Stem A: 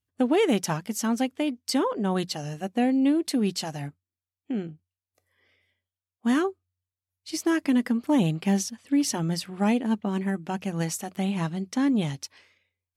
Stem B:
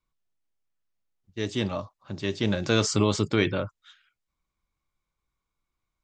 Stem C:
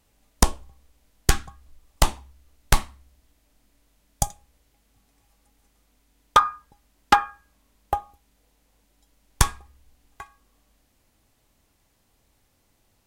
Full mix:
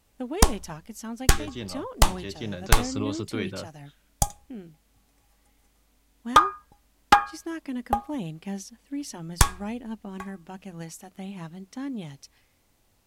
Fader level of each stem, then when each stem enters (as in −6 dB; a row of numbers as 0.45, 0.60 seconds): −10.5, −8.5, 0.0 decibels; 0.00, 0.00, 0.00 seconds